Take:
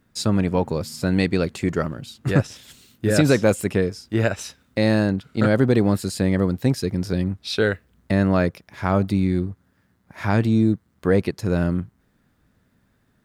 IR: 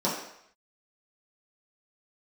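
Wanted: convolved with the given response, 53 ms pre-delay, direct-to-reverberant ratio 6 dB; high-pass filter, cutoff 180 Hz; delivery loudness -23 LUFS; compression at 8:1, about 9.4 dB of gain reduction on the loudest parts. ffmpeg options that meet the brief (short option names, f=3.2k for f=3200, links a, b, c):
-filter_complex "[0:a]highpass=180,acompressor=threshold=-23dB:ratio=8,asplit=2[a][b];[1:a]atrim=start_sample=2205,adelay=53[c];[b][c]afir=irnorm=-1:irlink=0,volume=-17.5dB[d];[a][d]amix=inputs=2:normalize=0,volume=4.5dB"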